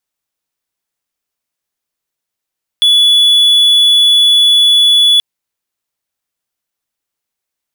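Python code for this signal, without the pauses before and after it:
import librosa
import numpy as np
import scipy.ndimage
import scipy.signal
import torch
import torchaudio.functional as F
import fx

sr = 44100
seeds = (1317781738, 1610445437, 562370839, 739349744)

y = 10.0 ** (-3.0 / 20.0) * (1.0 - 4.0 * np.abs(np.mod(3420.0 * (np.arange(round(2.38 * sr)) / sr) + 0.25, 1.0) - 0.5))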